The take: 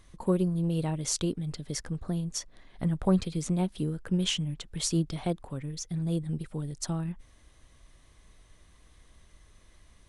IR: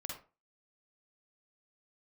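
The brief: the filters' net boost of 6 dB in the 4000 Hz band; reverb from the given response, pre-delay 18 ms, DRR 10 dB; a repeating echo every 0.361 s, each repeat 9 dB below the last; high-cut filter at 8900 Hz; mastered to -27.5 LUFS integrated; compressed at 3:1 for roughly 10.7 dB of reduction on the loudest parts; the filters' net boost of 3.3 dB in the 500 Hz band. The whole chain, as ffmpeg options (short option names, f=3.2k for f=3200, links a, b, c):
-filter_complex "[0:a]lowpass=8.9k,equalizer=f=500:t=o:g=4.5,equalizer=f=4k:t=o:g=8.5,acompressor=threshold=-33dB:ratio=3,aecho=1:1:361|722|1083|1444:0.355|0.124|0.0435|0.0152,asplit=2[a][b];[1:a]atrim=start_sample=2205,adelay=18[c];[b][c]afir=irnorm=-1:irlink=0,volume=-8.5dB[d];[a][d]amix=inputs=2:normalize=0,volume=7.5dB"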